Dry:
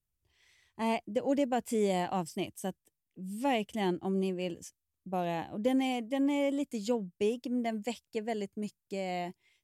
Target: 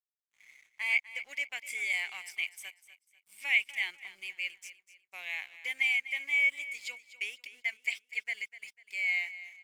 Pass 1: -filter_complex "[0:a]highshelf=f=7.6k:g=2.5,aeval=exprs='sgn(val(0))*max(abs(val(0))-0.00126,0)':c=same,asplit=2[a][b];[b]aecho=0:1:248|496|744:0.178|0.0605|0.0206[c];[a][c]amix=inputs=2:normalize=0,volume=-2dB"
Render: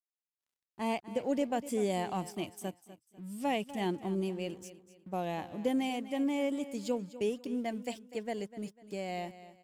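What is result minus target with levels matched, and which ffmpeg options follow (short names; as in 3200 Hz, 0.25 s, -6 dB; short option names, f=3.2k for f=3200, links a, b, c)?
2000 Hz band -13.5 dB
-filter_complex "[0:a]highpass=f=2.2k:t=q:w=14,highshelf=f=7.6k:g=2.5,aeval=exprs='sgn(val(0))*max(abs(val(0))-0.00126,0)':c=same,asplit=2[a][b];[b]aecho=0:1:248|496|744:0.178|0.0605|0.0206[c];[a][c]amix=inputs=2:normalize=0,volume=-2dB"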